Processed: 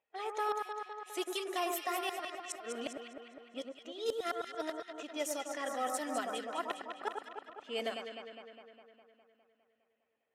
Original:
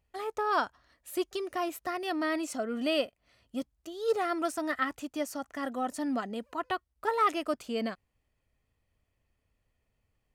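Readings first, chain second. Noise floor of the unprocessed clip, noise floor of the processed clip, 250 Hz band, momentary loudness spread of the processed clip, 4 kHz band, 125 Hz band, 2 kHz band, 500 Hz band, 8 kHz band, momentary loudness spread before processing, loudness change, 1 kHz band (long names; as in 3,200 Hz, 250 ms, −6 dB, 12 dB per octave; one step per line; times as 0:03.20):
−80 dBFS, −80 dBFS, −10.5 dB, 13 LU, −2.0 dB, can't be measured, −6.0 dB, −5.5 dB, +1.5 dB, 9 LU, −6.0 dB, −5.5 dB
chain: spectral magnitudes quantised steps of 15 dB
high-pass filter 680 Hz 12 dB per octave
parametric band 1,200 Hz −8 dB 1.5 octaves
notch filter 4,600 Hz, Q 5.4
gate with flip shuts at −28 dBFS, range −38 dB
on a send: delay that swaps between a low-pass and a high-pass 102 ms, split 1,600 Hz, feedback 80%, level −4 dB
on the sum: low-pass that shuts in the quiet parts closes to 1,900 Hz, open at −36.5 dBFS
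level +5 dB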